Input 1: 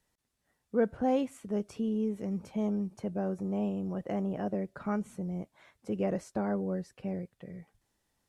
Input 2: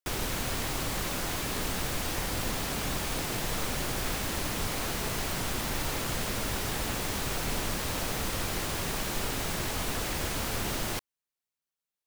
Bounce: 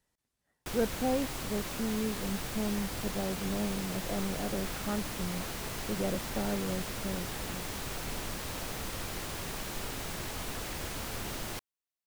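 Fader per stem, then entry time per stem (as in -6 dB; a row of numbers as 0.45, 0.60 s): -2.5, -6.0 dB; 0.00, 0.60 s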